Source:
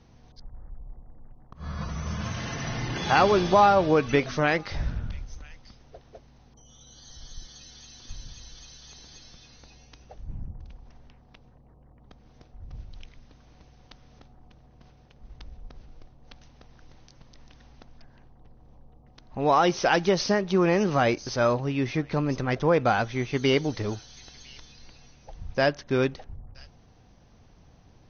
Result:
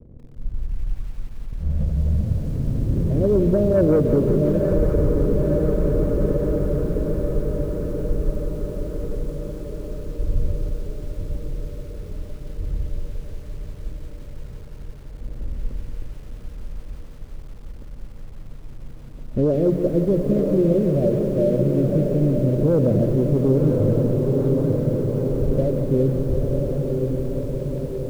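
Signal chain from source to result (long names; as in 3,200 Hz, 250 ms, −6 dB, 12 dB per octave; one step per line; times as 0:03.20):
Butterworth low-pass 600 Hz 96 dB per octave
low-shelf EQ 100 Hz +4 dB
mains-hum notches 60/120/180 Hz
convolution reverb RT60 0.55 s, pre-delay 70 ms, DRR 16.5 dB
phase shifter 0.26 Hz, delay 1.5 ms, feedback 53%
leveller curve on the samples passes 1
feedback delay with all-pass diffusion 998 ms, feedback 66%, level −6 dB
brickwall limiter −14.5 dBFS, peak gain reduction 9 dB
feedback echo at a low word length 175 ms, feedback 80%, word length 8 bits, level −10 dB
level +3 dB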